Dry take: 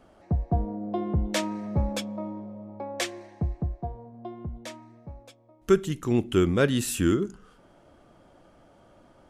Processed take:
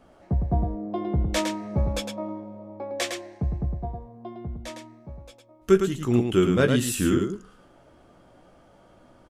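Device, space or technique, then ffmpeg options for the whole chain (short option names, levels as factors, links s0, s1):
slapback doubling: -filter_complex "[0:a]asplit=3[s0][s1][s2];[s1]adelay=16,volume=0.473[s3];[s2]adelay=108,volume=0.562[s4];[s0][s3][s4]amix=inputs=3:normalize=0"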